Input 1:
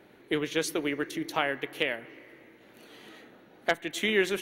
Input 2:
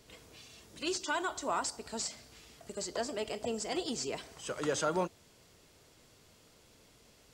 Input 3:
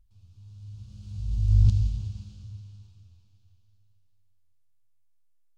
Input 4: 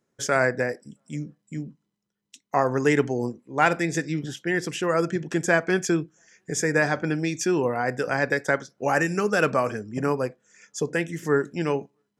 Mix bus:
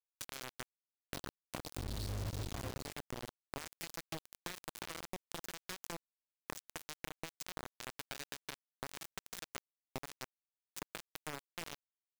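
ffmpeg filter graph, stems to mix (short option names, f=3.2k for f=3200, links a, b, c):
-filter_complex "[1:a]alimiter=level_in=7.5dB:limit=-24dB:level=0:latency=1:release=228,volume=-7.5dB,lowpass=f=4.1k:t=q:w=6.4,volume=-10dB[a];[2:a]acrossover=split=150[b][c];[b]acompressor=threshold=-30dB:ratio=10[d];[d][c]amix=inputs=2:normalize=0,adelay=600,volume=1dB[e];[3:a]bandreject=f=50:t=h:w=6,bandreject=f=100:t=h:w=6,bandreject=f=150:t=h:w=6,bandreject=f=200:t=h:w=6,bandreject=f=250:t=h:w=6,bandreject=f=300:t=h:w=6,bandreject=f=350:t=h:w=6,bandreject=f=400:t=h:w=6,volume=-2.5dB,acrossover=split=230|3000[f][g][h];[g]acompressor=threshold=-40dB:ratio=3[i];[f][i][h]amix=inputs=3:normalize=0,alimiter=level_in=4dB:limit=-24dB:level=0:latency=1:release=368,volume=-4dB,volume=0dB[j];[a][e][j]amix=inputs=3:normalize=0,acrusher=bits=4:mix=0:aa=0.000001,acompressor=threshold=-39dB:ratio=5"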